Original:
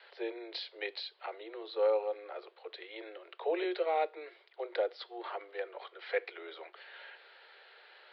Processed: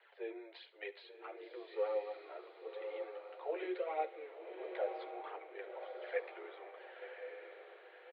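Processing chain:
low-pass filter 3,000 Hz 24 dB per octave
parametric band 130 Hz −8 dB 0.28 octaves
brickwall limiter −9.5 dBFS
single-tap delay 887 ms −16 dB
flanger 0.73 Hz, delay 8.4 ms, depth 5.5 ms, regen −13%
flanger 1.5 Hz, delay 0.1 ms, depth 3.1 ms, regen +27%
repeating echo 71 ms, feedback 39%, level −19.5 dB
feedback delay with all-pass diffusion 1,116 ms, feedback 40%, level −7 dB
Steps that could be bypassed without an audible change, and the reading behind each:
parametric band 130 Hz: nothing at its input below 300 Hz
brickwall limiter −9.5 dBFS: peak of its input −18.5 dBFS

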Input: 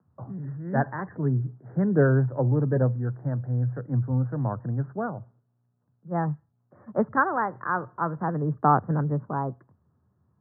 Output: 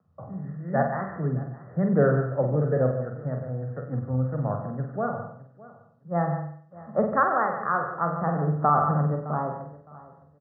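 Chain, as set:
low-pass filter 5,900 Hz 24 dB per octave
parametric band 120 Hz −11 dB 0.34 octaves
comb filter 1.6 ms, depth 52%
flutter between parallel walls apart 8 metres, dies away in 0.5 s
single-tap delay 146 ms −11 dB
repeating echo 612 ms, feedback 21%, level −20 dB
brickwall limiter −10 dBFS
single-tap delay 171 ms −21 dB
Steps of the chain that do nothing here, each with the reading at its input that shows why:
low-pass filter 5,900 Hz: nothing at its input above 1,700 Hz

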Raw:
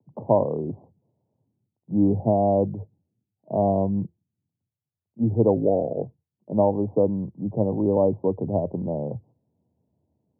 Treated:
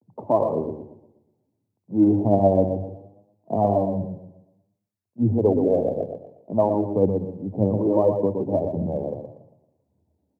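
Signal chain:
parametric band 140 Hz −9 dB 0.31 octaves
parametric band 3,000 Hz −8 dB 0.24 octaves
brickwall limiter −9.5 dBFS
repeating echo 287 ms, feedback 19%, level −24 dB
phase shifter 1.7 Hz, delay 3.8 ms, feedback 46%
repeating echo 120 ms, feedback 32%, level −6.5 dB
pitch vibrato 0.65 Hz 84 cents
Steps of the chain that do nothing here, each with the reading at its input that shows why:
parametric band 3,000 Hz: nothing at its input above 1,000 Hz

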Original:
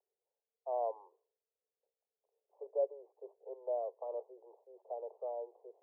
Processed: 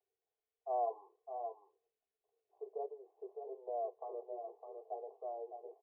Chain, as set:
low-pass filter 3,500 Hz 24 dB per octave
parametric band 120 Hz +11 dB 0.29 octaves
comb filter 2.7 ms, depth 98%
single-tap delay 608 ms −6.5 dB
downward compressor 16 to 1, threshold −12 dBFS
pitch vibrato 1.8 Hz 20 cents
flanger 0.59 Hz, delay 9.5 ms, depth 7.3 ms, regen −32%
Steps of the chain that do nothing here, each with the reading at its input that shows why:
low-pass filter 3,500 Hz: nothing at its input above 910 Hz
parametric band 120 Hz: nothing at its input below 360 Hz
downward compressor, threshold −12 dBFS: peak of its input −24.0 dBFS

